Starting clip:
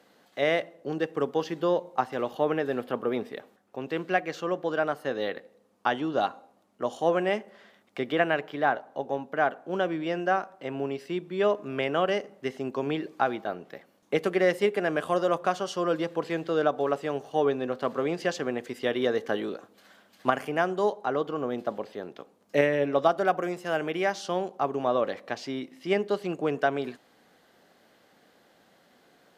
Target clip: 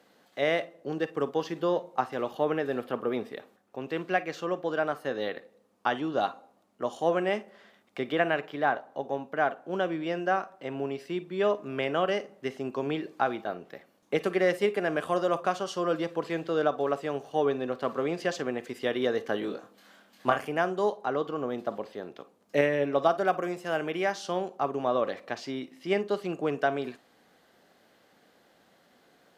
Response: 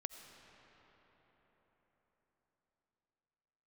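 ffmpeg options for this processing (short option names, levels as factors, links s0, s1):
-filter_complex "[0:a]asettb=1/sr,asplit=3[s0][s1][s2];[s0]atrim=end=19.404[s3];[s1]atrim=start=19.4:end=20.4,asetpts=PTS-STARTPTS,afade=t=in:d=0.004:c=qsin,afade=t=out:st=0.996:d=0.004:c=qsin,asplit=2[s4][s5];[s5]adelay=25,volume=0.562[s6];[s4][s6]amix=inputs=2:normalize=0,atrim=end_sample=44100[s7];[s2]atrim=start=20.396[s8];[s3][s7]acrossfade=d=0.004:c1=hsin:c2=qsin[s9];[s9][s8]acrossfade=d=0.004:c1=qsin:c2=hsin[s10];[1:a]atrim=start_sample=2205,afade=t=out:st=0.16:d=0.01,atrim=end_sample=7497,asetrate=83790,aresample=44100[s11];[s10][s11]afir=irnorm=-1:irlink=0,volume=2.51"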